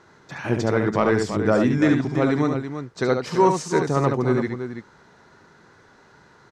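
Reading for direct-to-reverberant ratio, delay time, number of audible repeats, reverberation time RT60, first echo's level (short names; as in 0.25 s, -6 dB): none, 71 ms, 2, none, -5.5 dB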